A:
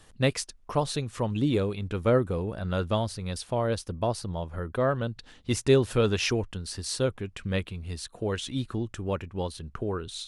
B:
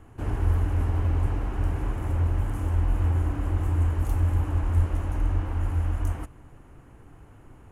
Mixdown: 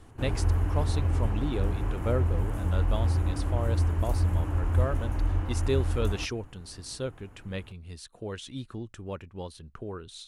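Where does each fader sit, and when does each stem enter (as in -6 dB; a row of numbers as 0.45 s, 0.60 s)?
-7.0 dB, -2.0 dB; 0.00 s, 0.00 s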